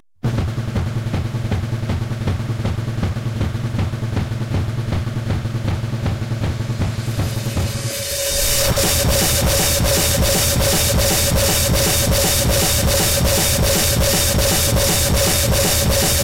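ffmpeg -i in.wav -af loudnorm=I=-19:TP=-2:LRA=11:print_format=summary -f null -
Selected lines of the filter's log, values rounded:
Input Integrated:    -16.8 LUFS
Input True Peak:      -8.2 dBTP
Input LRA:             7.4 LU
Input Threshold:     -26.8 LUFS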